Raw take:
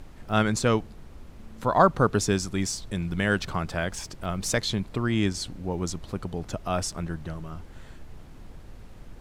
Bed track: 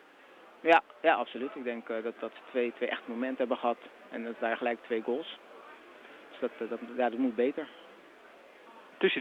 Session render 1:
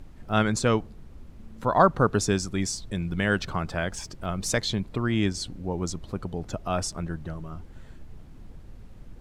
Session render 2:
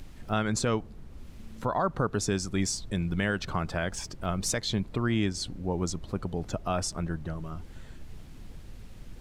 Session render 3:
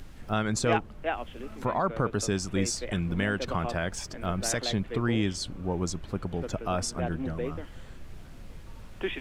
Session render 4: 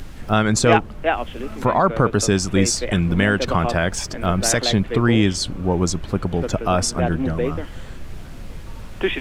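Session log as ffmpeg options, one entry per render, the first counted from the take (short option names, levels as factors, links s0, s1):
-af "afftdn=nr=6:nf=-46"
-filter_complex "[0:a]acrossover=split=2000[s0][s1];[s1]acompressor=mode=upward:threshold=0.002:ratio=2.5[s2];[s0][s2]amix=inputs=2:normalize=0,alimiter=limit=0.133:level=0:latency=1:release=207"
-filter_complex "[1:a]volume=0.531[s0];[0:a][s0]amix=inputs=2:normalize=0"
-af "volume=3.35"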